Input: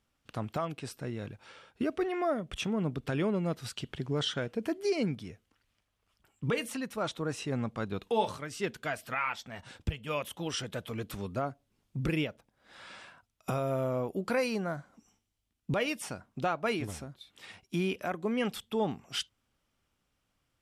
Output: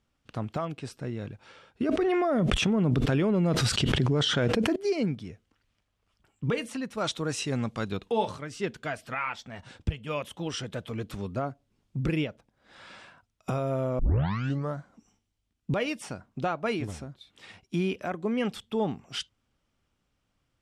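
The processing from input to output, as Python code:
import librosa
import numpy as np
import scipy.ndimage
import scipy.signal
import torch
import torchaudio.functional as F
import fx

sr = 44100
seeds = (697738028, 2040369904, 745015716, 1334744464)

y = fx.env_flatten(x, sr, amount_pct=100, at=(1.89, 4.76))
y = fx.high_shelf(y, sr, hz=2500.0, db=12.0, at=(6.97, 7.97))
y = fx.edit(y, sr, fx.tape_start(start_s=13.99, length_s=0.8), tone=tone)
y = scipy.signal.sosfilt(scipy.signal.butter(2, 8700.0, 'lowpass', fs=sr, output='sos'), y)
y = fx.low_shelf(y, sr, hz=480.0, db=4.0)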